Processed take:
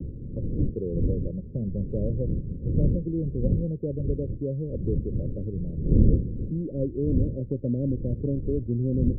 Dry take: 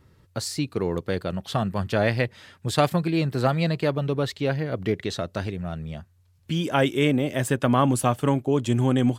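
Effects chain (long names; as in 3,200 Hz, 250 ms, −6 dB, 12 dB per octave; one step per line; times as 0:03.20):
wind on the microphone 130 Hz −20 dBFS
Butterworth low-pass 550 Hz 96 dB per octave
multiband upward and downward compressor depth 40%
level −5.5 dB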